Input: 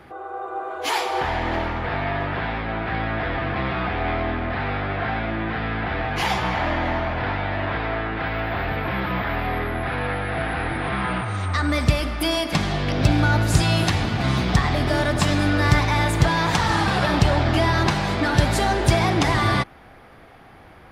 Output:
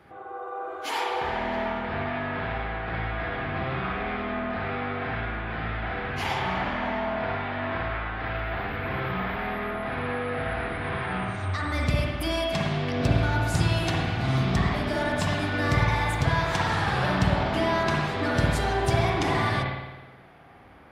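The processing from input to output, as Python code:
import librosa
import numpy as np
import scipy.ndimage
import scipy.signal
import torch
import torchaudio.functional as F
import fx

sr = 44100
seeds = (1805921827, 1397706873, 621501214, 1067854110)

y = scipy.signal.sosfilt(scipy.signal.butter(2, 50.0, 'highpass', fs=sr, output='sos'), x)
y = fx.rev_spring(y, sr, rt60_s=1.1, pass_ms=(53,), chirp_ms=75, drr_db=-2.0)
y = y * librosa.db_to_amplitude(-8.5)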